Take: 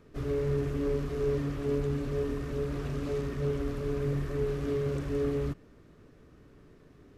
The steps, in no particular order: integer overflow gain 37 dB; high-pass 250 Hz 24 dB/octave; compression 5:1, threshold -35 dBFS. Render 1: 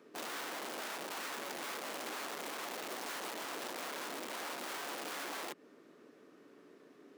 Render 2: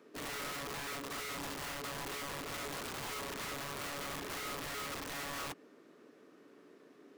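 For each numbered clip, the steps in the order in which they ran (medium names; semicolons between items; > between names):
compression > integer overflow > high-pass; high-pass > compression > integer overflow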